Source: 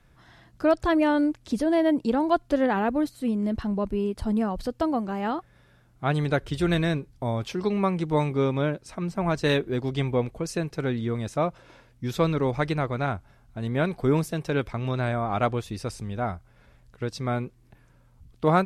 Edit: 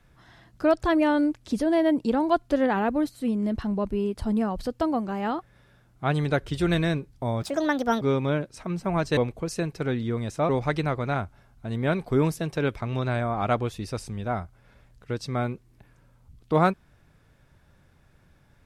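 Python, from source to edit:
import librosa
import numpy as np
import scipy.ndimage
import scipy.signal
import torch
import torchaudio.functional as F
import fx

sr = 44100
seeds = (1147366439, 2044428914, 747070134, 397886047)

y = fx.edit(x, sr, fx.speed_span(start_s=7.42, length_s=0.91, speed=1.54),
    fx.cut(start_s=9.49, length_s=0.66),
    fx.cut(start_s=11.47, length_s=0.94), tone=tone)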